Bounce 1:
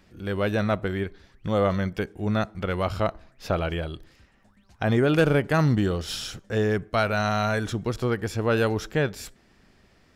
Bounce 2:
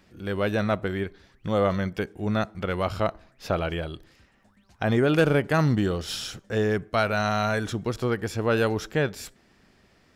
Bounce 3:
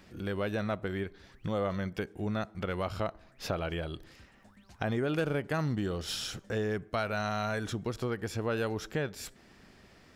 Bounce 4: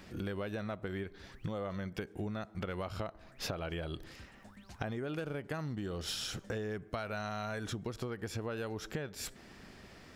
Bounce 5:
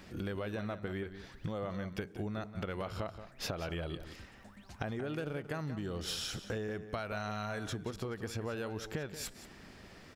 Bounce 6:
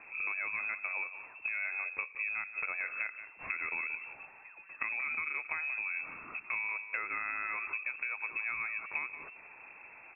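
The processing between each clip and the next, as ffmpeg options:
-af "lowshelf=f=65:g=-7"
-af "acompressor=threshold=0.01:ratio=2,volume=1.33"
-af "acompressor=threshold=0.0112:ratio=6,volume=1.5"
-filter_complex "[0:a]asplit=2[s0][s1];[s1]adelay=180.8,volume=0.282,highshelf=f=4000:g=-4.07[s2];[s0][s2]amix=inputs=2:normalize=0"
-af "lowpass=f=2300:t=q:w=0.5098,lowpass=f=2300:t=q:w=0.6013,lowpass=f=2300:t=q:w=0.9,lowpass=f=2300:t=q:w=2.563,afreqshift=-2700,volume=1.19"

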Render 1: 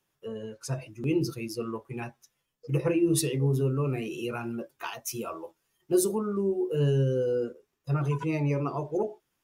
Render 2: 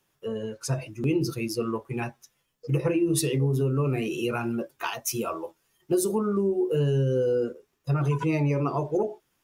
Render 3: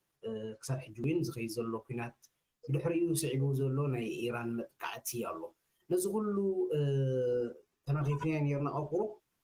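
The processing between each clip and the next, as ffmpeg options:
-af "acompressor=threshold=0.0501:ratio=6,volume=1.88"
-af "volume=0.422" -ar 48000 -c:a libopus -b:a 20k

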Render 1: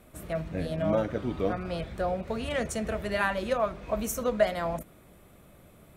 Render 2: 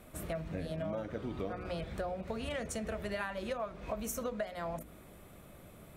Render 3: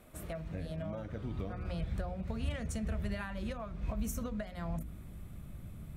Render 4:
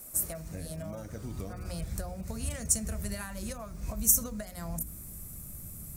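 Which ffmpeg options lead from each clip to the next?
-af "bandreject=f=60.65:t=h:w=4,bandreject=f=121.3:t=h:w=4,bandreject=f=181.95:t=h:w=4,bandreject=f=242.6:t=h:w=4,bandreject=f=303.25:t=h:w=4,bandreject=f=363.9:t=h:w=4,bandreject=f=424.55:t=h:w=4,bandreject=f=485.2:t=h:w=4,acompressor=threshold=0.0158:ratio=6,volume=1.12"
-af "asubboost=boost=7.5:cutoff=180,volume=0.668"
-af "aexciter=amount=10.2:drive=5.7:freq=5000"

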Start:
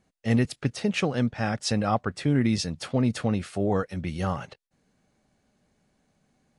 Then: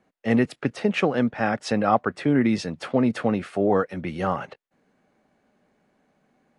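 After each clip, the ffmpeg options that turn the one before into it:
-filter_complex "[0:a]acrossover=split=200 2700:gain=0.2 1 0.224[s0][s1][s2];[s0][s1][s2]amix=inputs=3:normalize=0,volume=2"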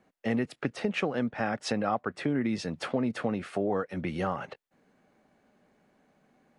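-af "acompressor=threshold=0.0355:ratio=2.5"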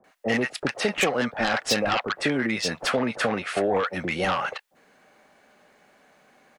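-filter_complex "[0:a]acrossover=split=520[s0][s1];[s1]aeval=exprs='0.126*sin(PI/2*3.16*val(0)/0.126)':c=same[s2];[s0][s2]amix=inputs=2:normalize=0,acrossover=split=840[s3][s4];[s4]adelay=40[s5];[s3][s5]amix=inputs=2:normalize=0"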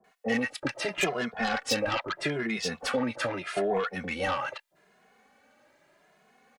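-filter_complex "[0:a]asplit=2[s0][s1];[s1]adelay=2.4,afreqshift=0.8[s2];[s0][s2]amix=inputs=2:normalize=1,volume=0.794"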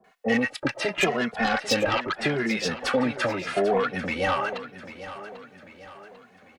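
-filter_complex "[0:a]asplit=2[s0][s1];[s1]adynamicsmooth=sensitivity=2:basefreq=6000,volume=0.75[s2];[s0][s2]amix=inputs=2:normalize=0,aecho=1:1:794|1588|2382|3176:0.2|0.0918|0.0422|0.0194"

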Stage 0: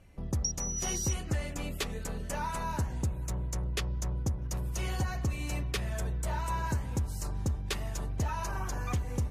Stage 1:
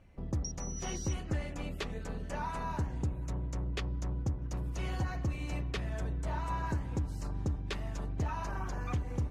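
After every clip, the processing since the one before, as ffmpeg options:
-filter_complex "[0:a]aemphasis=mode=reproduction:type=50kf,acrossover=split=7500[s0][s1];[s1]acompressor=threshold=0.00141:ratio=4:attack=1:release=60[s2];[s0][s2]amix=inputs=2:normalize=0,tremolo=f=220:d=0.462"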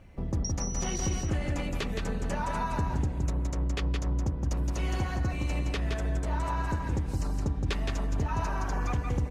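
-filter_complex "[0:a]alimiter=level_in=1.88:limit=0.0631:level=0:latency=1:release=178,volume=0.531,asplit=2[s0][s1];[s1]aecho=0:1:168:0.631[s2];[s0][s2]amix=inputs=2:normalize=0,volume=2.37"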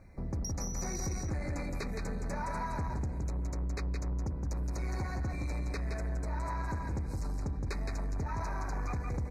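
-af "asoftclip=type=tanh:threshold=0.0473,asuperstop=centerf=3100:order=20:qfactor=2.4,volume=0.75"

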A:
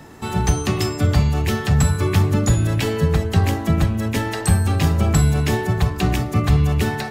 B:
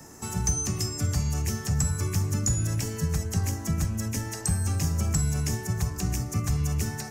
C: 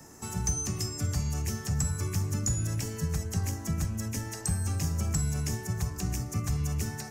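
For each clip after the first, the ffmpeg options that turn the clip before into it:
-filter_complex "[0:a]acrossover=split=220|1200|6700[s0][s1][s2][s3];[s0]acompressor=threshold=0.158:ratio=4[s4];[s1]acompressor=threshold=0.0178:ratio=4[s5];[s2]acompressor=threshold=0.02:ratio=4[s6];[s3]acompressor=threshold=0.00794:ratio=4[s7];[s4][s5][s6][s7]amix=inputs=4:normalize=0,highshelf=f=4700:t=q:w=3:g=8.5,volume=0.473"
-af "aeval=exprs='0.266*(cos(1*acos(clip(val(0)/0.266,-1,1)))-cos(1*PI/2))+0.00211*(cos(8*acos(clip(val(0)/0.266,-1,1)))-cos(8*PI/2))':c=same,volume=0.668"

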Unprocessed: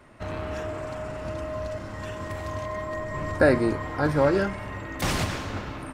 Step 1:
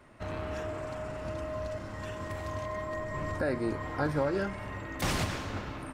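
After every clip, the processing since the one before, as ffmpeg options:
-af "alimiter=limit=0.168:level=0:latency=1:release=401,volume=0.631"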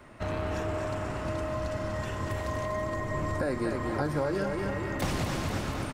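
-filter_complex "[0:a]aecho=1:1:242|484|726|968|1210|1452:0.447|0.219|0.107|0.0526|0.0258|0.0126,acrossover=split=880|5300[s0][s1][s2];[s0]acompressor=threshold=0.0224:ratio=4[s3];[s1]acompressor=threshold=0.00631:ratio=4[s4];[s2]acompressor=threshold=0.00282:ratio=4[s5];[s3][s4][s5]amix=inputs=3:normalize=0,volume=1.88"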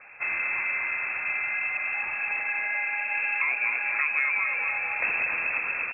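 -af "lowpass=f=2300:t=q:w=0.5098,lowpass=f=2300:t=q:w=0.6013,lowpass=f=2300:t=q:w=0.9,lowpass=f=2300:t=q:w=2.563,afreqshift=-2700,volume=1.41"

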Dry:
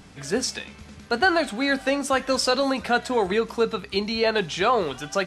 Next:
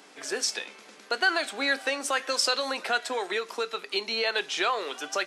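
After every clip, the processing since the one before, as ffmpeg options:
-filter_complex "[0:a]highpass=f=330:w=0.5412,highpass=f=330:w=1.3066,acrossover=split=1300[s0][s1];[s0]acompressor=threshold=0.0316:ratio=6[s2];[s2][s1]amix=inputs=2:normalize=0"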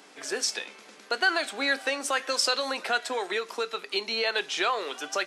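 -af anull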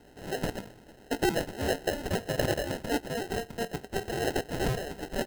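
-af "acrusher=samples=38:mix=1:aa=0.000001,volume=0.75"

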